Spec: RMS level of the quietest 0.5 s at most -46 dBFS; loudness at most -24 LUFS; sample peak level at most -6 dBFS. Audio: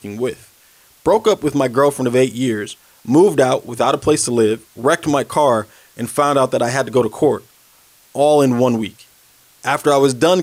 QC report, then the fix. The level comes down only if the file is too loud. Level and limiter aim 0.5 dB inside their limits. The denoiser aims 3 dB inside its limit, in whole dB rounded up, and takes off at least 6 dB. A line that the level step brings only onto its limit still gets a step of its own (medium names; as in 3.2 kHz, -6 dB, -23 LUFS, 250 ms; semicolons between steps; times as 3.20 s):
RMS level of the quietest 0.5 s -51 dBFS: pass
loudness -16.5 LUFS: fail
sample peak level -3.0 dBFS: fail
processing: trim -8 dB